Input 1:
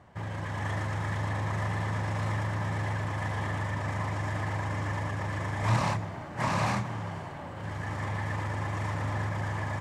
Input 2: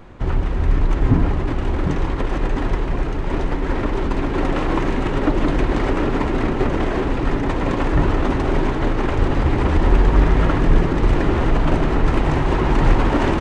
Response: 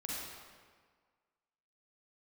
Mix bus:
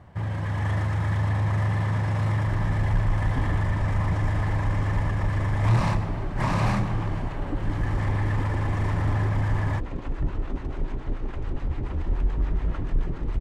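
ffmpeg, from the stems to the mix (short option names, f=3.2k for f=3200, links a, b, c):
-filter_complex "[0:a]equalizer=f=6.9k:t=o:w=0.68:g=-4,volume=0.5dB,asplit=2[a][b];[b]volume=-11.5dB[c];[1:a]acrossover=split=650[d][e];[d]aeval=exprs='val(0)*(1-0.7/2+0.7/2*cos(2*PI*7*n/s))':c=same[f];[e]aeval=exprs='val(0)*(1-0.7/2-0.7/2*cos(2*PI*7*n/s))':c=same[g];[f][g]amix=inputs=2:normalize=0,adelay=2250,volume=-15dB[h];[2:a]atrim=start_sample=2205[i];[c][i]afir=irnorm=-1:irlink=0[j];[a][h][j]amix=inputs=3:normalize=0,lowshelf=f=150:g=11,asoftclip=type=tanh:threshold=-13.5dB"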